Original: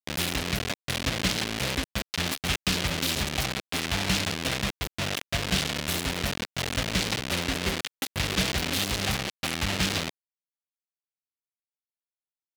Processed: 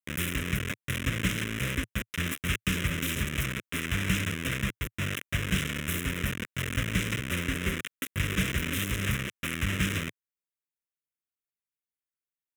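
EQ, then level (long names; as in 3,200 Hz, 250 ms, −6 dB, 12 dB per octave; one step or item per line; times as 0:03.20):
dynamic equaliser 110 Hz, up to +4 dB, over −42 dBFS, Q 2.3
phaser with its sweep stopped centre 1,900 Hz, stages 4
0.0 dB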